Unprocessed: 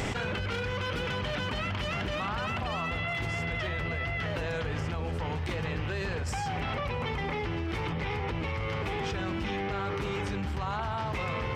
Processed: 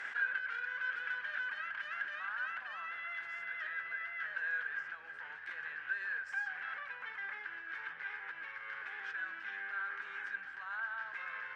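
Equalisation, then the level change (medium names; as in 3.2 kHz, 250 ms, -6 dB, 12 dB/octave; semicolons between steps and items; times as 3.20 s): band-pass filter 1.6 kHz, Q 18; tilt EQ +2 dB/octave; +9.0 dB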